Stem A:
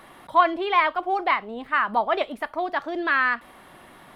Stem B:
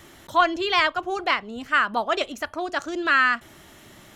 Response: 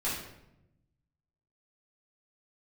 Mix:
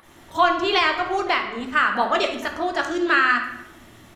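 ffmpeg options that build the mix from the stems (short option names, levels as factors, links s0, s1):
-filter_complex "[0:a]alimiter=limit=0.168:level=0:latency=1:release=469,acompressor=mode=upward:threshold=0.0112:ratio=2.5,volume=0.266,asplit=2[s0][s1];[1:a]volume=-1,adelay=27,volume=1,asplit=2[s2][s3];[s3]volume=0.422[s4];[s1]apad=whole_len=184545[s5];[s2][s5]sidechaingate=range=0.0224:threshold=0.00355:ratio=16:detection=peak[s6];[2:a]atrim=start_sample=2205[s7];[s4][s7]afir=irnorm=-1:irlink=0[s8];[s0][s6][s8]amix=inputs=3:normalize=0,alimiter=limit=0.447:level=0:latency=1:release=291"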